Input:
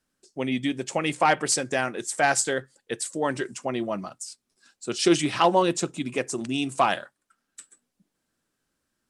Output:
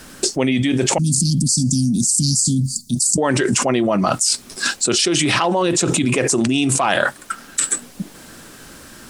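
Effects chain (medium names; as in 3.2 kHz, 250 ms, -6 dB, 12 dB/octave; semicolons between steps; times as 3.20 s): 0.98–3.18 s: Chebyshev band-stop 250–4500 Hz, order 5; level flattener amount 100%; trim -2 dB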